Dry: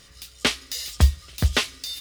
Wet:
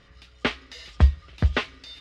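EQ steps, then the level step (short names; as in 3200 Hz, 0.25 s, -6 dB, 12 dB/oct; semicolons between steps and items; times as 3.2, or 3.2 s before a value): LPF 2300 Hz 12 dB/oct; 0.0 dB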